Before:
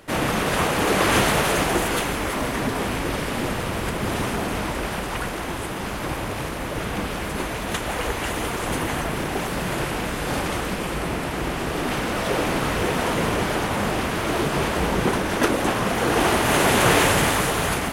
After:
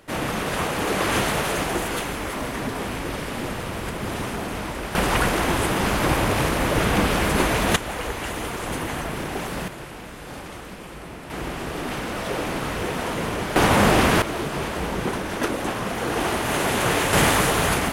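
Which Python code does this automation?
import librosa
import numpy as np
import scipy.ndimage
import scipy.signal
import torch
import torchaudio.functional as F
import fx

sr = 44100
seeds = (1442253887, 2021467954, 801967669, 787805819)

y = fx.gain(x, sr, db=fx.steps((0.0, -3.5), (4.95, 7.0), (7.76, -3.0), (9.68, -11.5), (11.3, -4.0), (13.56, 7.0), (14.22, -4.5), (17.13, 2.0)))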